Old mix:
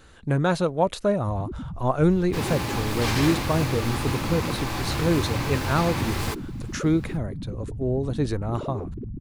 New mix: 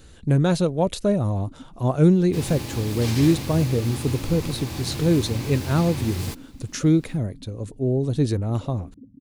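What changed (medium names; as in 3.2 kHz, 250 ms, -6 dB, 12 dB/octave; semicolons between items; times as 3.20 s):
speech +5.5 dB; first sound: add two resonant band-passes 380 Hz, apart 0.96 oct; master: add peaking EQ 1.2 kHz -11 dB 2.2 oct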